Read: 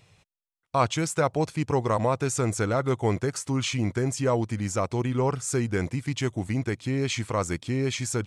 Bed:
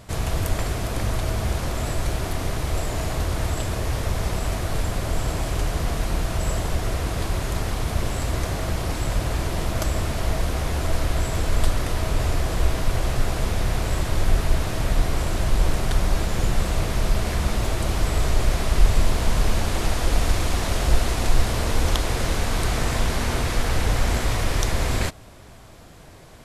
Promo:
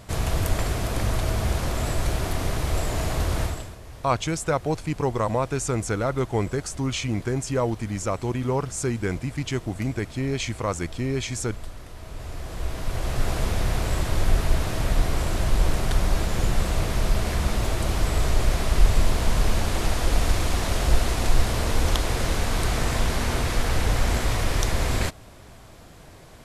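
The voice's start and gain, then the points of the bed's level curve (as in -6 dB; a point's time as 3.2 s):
3.30 s, 0.0 dB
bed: 3.42 s 0 dB
3.78 s -17 dB
11.93 s -17 dB
13.3 s -1 dB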